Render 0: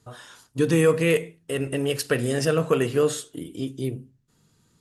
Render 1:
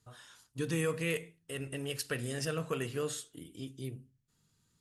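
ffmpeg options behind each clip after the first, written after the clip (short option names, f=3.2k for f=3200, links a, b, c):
-af "equalizer=f=440:t=o:w=2.9:g=-7,volume=-8dB"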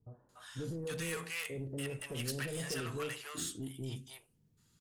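-filter_complex "[0:a]acrossover=split=690[a][b];[a]alimiter=level_in=9dB:limit=-24dB:level=0:latency=1,volume=-9dB[c];[c][b]amix=inputs=2:normalize=0,asoftclip=type=tanh:threshold=-36.5dB,acrossover=split=700[d][e];[e]adelay=290[f];[d][f]amix=inputs=2:normalize=0,volume=3.5dB"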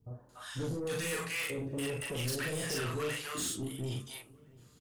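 -filter_complex "[0:a]asplit=2[a][b];[b]adelay=40,volume=-2dB[c];[a][c]amix=inputs=2:normalize=0,asoftclip=type=tanh:threshold=-35dB,asplit=2[d][e];[e]adelay=679,lowpass=f=1.6k:p=1,volume=-22.5dB,asplit=2[f][g];[g]adelay=679,lowpass=f=1.6k:p=1,volume=0.49,asplit=2[h][i];[i]adelay=679,lowpass=f=1.6k:p=1,volume=0.49[j];[d][f][h][j]amix=inputs=4:normalize=0,volume=5dB"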